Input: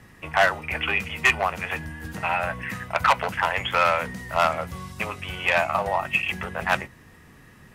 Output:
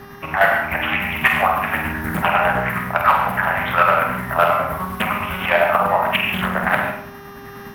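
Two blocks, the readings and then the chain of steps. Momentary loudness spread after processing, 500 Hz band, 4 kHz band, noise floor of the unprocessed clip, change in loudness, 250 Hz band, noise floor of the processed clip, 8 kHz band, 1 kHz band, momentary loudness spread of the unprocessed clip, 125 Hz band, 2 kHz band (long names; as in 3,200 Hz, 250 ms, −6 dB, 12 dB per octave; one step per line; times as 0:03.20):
8 LU, +6.5 dB, +3.0 dB, −51 dBFS, +6.0 dB, +10.0 dB, −37 dBFS, can't be measured, +7.0 dB, 11 LU, +7.0 dB, +5.5 dB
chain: drawn EQ curve 120 Hz 0 dB, 260 Hz +7 dB, 420 Hz −13 dB, 600 Hz +5 dB, 1,300 Hz +9 dB, 6,700 Hz −18 dB, 13,000 Hz +14 dB
square-wave tremolo 9.8 Hz, depth 60%, duty 50%
on a send: flutter between parallel walls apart 8.3 metres, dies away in 0.46 s
on the sum: hum with harmonics 400 Hz, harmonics 16, −48 dBFS −7 dB per octave
automatic gain control gain up to 4 dB
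dynamic equaliser 1,000 Hz, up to −6 dB, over −28 dBFS, Q 1.8
reverb whose tail is shaped and stops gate 170 ms flat, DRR 3 dB
in parallel at 0 dB: downward compressor, threshold −26 dBFS, peak gain reduction 14 dB
on the sum: highs frequency-modulated by the lows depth 0.39 ms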